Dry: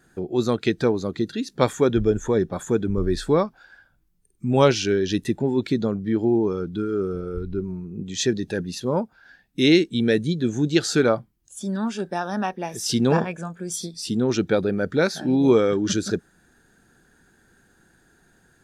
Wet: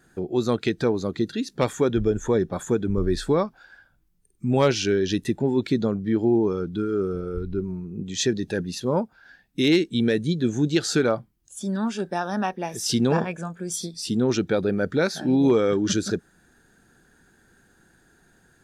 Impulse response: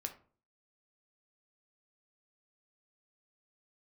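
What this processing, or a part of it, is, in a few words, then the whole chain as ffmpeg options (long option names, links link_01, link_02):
clipper into limiter: -af "asoftclip=type=hard:threshold=-8.5dB,alimiter=limit=-11.5dB:level=0:latency=1:release=158"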